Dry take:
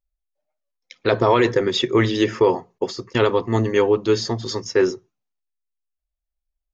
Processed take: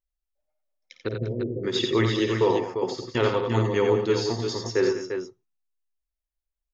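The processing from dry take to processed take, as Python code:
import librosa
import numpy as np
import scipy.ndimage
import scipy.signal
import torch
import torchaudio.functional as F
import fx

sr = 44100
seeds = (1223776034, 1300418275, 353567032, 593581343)

p1 = fx.gaussian_blur(x, sr, sigma=24.0, at=(1.07, 1.63), fade=0.02)
p2 = p1 + fx.echo_multitap(p1, sr, ms=(54, 88, 96, 173, 198, 347), db=(-11.0, -6.0, -14.5, -19.0, -12.5, -7.0), dry=0)
y = p2 * librosa.db_to_amplitude(-6.0)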